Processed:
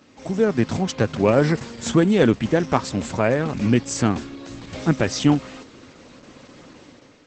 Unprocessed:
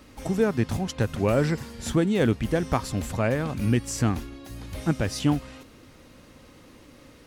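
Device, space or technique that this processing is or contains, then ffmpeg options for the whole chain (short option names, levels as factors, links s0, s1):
video call: -filter_complex "[0:a]asplit=3[s0][s1][s2];[s0]afade=t=out:st=0.95:d=0.02[s3];[s1]lowpass=7500,afade=t=in:st=0.95:d=0.02,afade=t=out:st=1.56:d=0.02[s4];[s2]afade=t=in:st=1.56:d=0.02[s5];[s3][s4][s5]amix=inputs=3:normalize=0,highpass=140,dynaudnorm=f=130:g=7:m=2.51" -ar 48000 -c:a libopus -b:a 12k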